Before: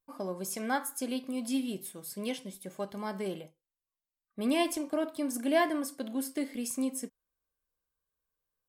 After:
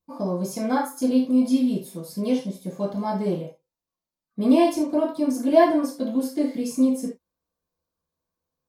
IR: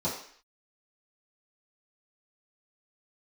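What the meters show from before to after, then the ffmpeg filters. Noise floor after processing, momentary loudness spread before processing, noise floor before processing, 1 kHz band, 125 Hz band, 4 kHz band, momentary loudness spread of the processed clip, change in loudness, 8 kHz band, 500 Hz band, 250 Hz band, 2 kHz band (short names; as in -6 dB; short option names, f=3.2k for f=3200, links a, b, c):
under -85 dBFS, 12 LU, under -85 dBFS, +9.0 dB, +14.0 dB, +1.5 dB, 12 LU, +10.5 dB, -0.5 dB, +10.5 dB, +12.0 dB, +1.0 dB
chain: -filter_complex "[1:a]atrim=start_sample=2205,afade=t=out:st=0.14:d=0.01,atrim=end_sample=6615[a];[0:a][a]afir=irnorm=-1:irlink=0,volume=-2dB"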